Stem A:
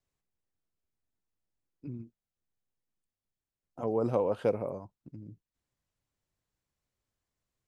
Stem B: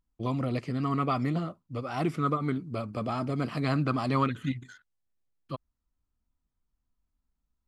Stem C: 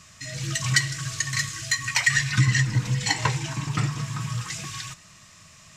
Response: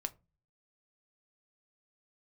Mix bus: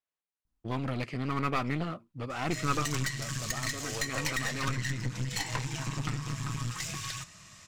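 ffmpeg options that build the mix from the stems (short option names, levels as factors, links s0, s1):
-filter_complex "[0:a]bandpass=f=1600:t=q:w=0.51:csg=0,volume=0.75[s0];[1:a]adynamicequalizer=threshold=0.00447:dfrequency=2200:dqfactor=0.8:tfrequency=2200:tqfactor=0.8:attack=5:release=100:ratio=0.375:range=4:mode=boostabove:tftype=bell,adelay=450,volume=0.794,afade=t=out:st=2.74:d=0.33:silence=0.375837[s1];[2:a]adelay=2300,volume=1.06[s2];[s0][s2]amix=inputs=2:normalize=0,aeval=exprs='(tanh(7.94*val(0)+0.55)-tanh(0.55))/7.94':c=same,acompressor=threshold=0.0355:ratio=5,volume=1[s3];[s1][s3]amix=inputs=2:normalize=0,aeval=exprs='clip(val(0),-1,0.015)':c=same"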